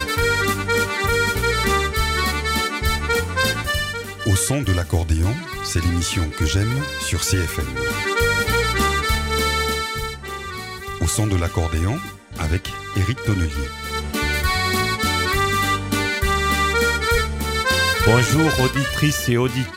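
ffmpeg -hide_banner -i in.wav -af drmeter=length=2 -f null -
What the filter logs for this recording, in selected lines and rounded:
Channel 1: DR: 10.1
Overall DR: 10.1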